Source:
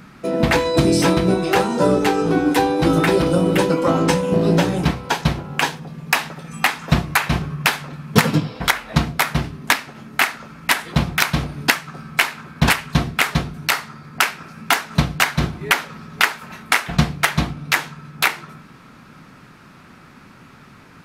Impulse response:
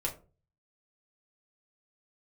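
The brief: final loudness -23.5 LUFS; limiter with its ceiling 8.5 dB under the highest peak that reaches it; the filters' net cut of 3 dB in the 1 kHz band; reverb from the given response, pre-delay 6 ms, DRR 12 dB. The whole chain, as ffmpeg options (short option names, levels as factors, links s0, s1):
-filter_complex "[0:a]equalizer=f=1000:t=o:g=-4,alimiter=limit=0.355:level=0:latency=1,asplit=2[s0][s1];[1:a]atrim=start_sample=2205,adelay=6[s2];[s1][s2]afir=irnorm=-1:irlink=0,volume=0.168[s3];[s0][s3]amix=inputs=2:normalize=0,volume=0.794"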